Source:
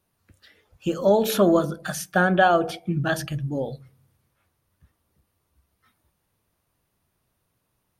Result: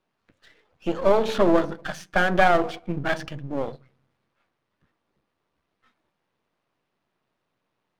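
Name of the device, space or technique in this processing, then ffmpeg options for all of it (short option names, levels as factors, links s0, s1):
crystal radio: -af "highpass=210,lowpass=3500,aeval=exprs='if(lt(val(0),0),0.251*val(0),val(0))':c=same,volume=1.5"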